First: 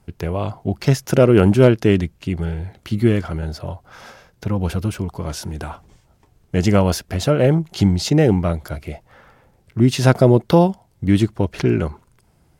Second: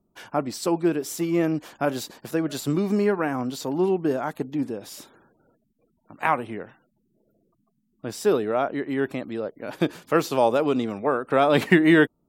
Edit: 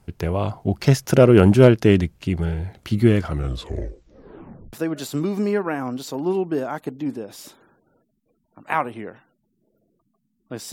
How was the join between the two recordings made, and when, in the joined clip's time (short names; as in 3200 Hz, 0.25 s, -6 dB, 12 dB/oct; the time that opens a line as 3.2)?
first
3.24 tape stop 1.49 s
4.73 switch to second from 2.26 s